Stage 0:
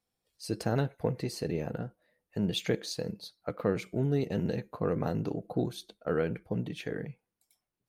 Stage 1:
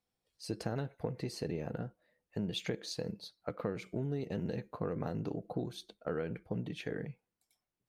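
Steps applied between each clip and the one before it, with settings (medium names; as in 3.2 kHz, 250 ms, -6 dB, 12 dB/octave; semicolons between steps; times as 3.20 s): treble shelf 10 kHz -9.5 dB; compression, threshold -30 dBFS, peak gain reduction 8 dB; trim -2 dB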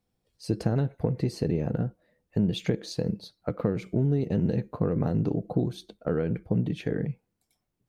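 bass shelf 460 Hz +11.5 dB; trim +2.5 dB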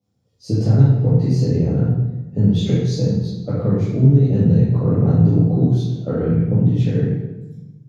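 reverberation RT60 1.0 s, pre-delay 3 ms, DRR -9.5 dB; trim -9.5 dB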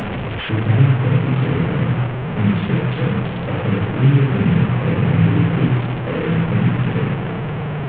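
one-bit delta coder 16 kbps, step -16 dBFS; flange 0.44 Hz, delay 4.8 ms, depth 2.8 ms, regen -74%; trim +3 dB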